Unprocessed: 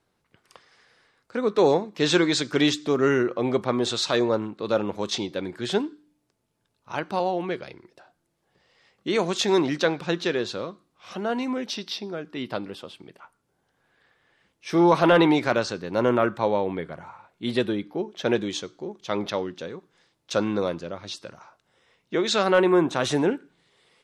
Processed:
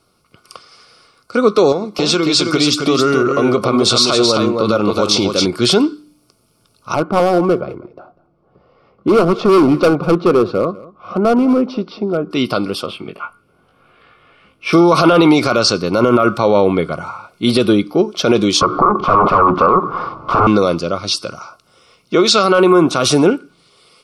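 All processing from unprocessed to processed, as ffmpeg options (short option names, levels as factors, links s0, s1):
-filter_complex "[0:a]asettb=1/sr,asplit=3[s0][s1][s2];[s0]atrim=end=1.724[s3];[s1]atrim=start=1.72:end=5.46,asetpts=PTS-STARTPTS,afade=t=in:d=0.004:c=qsin,afade=t=out:st=3.736:d=0.004:c=qsin,acompressor=threshold=0.0501:ratio=4:attack=3.2:release=140:knee=1:detection=peak,aecho=1:1:267:0.562,atrim=end_sample=164934[s4];[s2]atrim=start=5.456[s5];[s3][s4]acrossfade=d=0.004:c1=hsin:c2=qsin[s6];[s6][s5]acrossfade=d=0.004:c1=qsin:c2=hsin,asettb=1/sr,asplit=3[s7][s8][s9];[s7]atrim=end=6.944[s10];[s8]atrim=start=6.94:end=12.31,asetpts=PTS-STARTPTS,afade=t=in:d=0.004:c=qsin,afade=t=out:st=5.366:d=0.004:c=qsin,lowpass=1000,asoftclip=type=hard:threshold=0.0631,aecho=1:1:197:0.1,atrim=end_sample=236817[s11];[s9]atrim=start=12.306[s12];[s10][s11]acrossfade=d=0.004:c1=hsin:c2=qsin[s13];[s13][s12]acrossfade=d=0.004:c1=qsin:c2=hsin,asettb=1/sr,asplit=3[s14][s15][s16];[s14]atrim=end=12.864[s17];[s15]atrim=start=12.86:end=14.73,asetpts=PTS-STARTPTS,afade=t=in:d=0.004:c=qsin,afade=t=out:st=1.866:d=0.004:c=qsin,highshelf=f=3800:t=q:w=1.5:g=-12.5,asplit=2[s18][s19];[s19]adelay=19,volume=0.631[s20];[s18][s20]amix=inputs=2:normalize=0,atrim=end_sample=82467[s21];[s16]atrim=start=14.726[s22];[s17][s21]acrossfade=d=0.004:c1=hsin:c2=qsin[s23];[s23][s22]acrossfade=d=0.004:c1=qsin:c2=hsin,asettb=1/sr,asplit=3[s24][s25][s26];[s24]atrim=end=18.614[s27];[s25]atrim=start=18.61:end=20.47,asetpts=PTS-STARTPTS,afade=t=in:d=0.004:c=qsin,afade=t=out:st=1.856:d=0.004:c=qsin,acompressor=threshold=0.00282:ratio=2:attack=3.2:release=140:knee=1:detection=peak,aeval=exprs='0.0531*sin(PI/2*8.91*val(0)/0.0531)':c=same,lowpass=f=1100:t=q:w=4.6[s28];[s26]atrim=start=20.466[s29];[s27][s28]acrossfade=d=0.004:c1=hsin:c2=qsin[s30];[s30][s29]acrossfade=d=0.004:c1=qsin:c2=hsin,superequalizer=9b=0.631:10b=1.78:11b=0.251:14b=2.24:16b=2.24,dynaudnorm=f=450:g=13:m=1.68,alimiter=level_in=4.47:limit=0.891:release=50:level=0:latency=1,volume=0.891"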